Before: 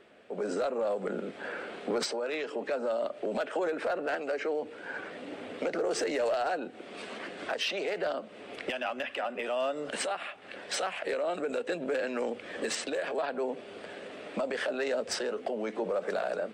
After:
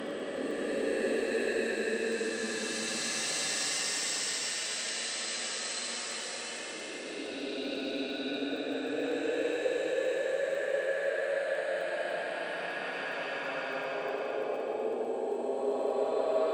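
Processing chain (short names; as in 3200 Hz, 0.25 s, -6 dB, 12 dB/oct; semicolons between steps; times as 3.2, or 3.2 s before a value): Paulstretch 28×, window 0.10 s, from 12.6; crackle 16/s -44 dBFS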